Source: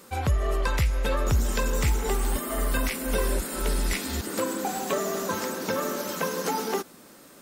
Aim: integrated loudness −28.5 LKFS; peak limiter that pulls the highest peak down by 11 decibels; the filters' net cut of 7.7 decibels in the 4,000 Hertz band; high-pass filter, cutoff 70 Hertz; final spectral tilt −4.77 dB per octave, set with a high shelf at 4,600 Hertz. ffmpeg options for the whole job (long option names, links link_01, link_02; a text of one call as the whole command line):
ffmpeg -i in.wav -af "highpass=70,equalizer=frequency=4000:width_type=o:gain=-7.5,highshelf=frequency=4600:gain=-5,volume=6dB,alimiter=limit=-19.5dB:level=0:latency=1" out.wav